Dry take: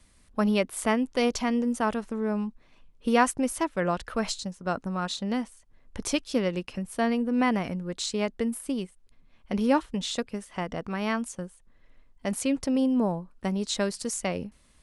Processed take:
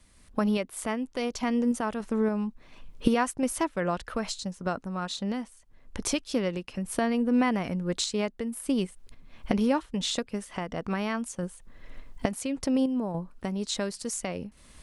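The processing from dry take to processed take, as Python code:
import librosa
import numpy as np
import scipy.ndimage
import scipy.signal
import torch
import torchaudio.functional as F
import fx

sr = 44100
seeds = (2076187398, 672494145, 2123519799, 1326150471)

y = fx.recorder_agc(x, sr, target_db=-16.0, rise_db_per_s=18.0, max_gain_db=30)
y = fx.tremolo_random(y, sr, seeds[0], hz=3.5, depth_pct=55)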